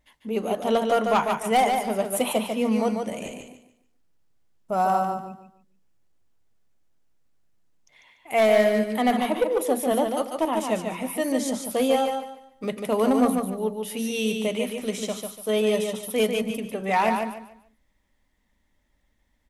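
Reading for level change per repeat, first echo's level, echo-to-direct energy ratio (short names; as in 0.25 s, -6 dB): -11.0 dB, -5.0 dB, -4.5 dB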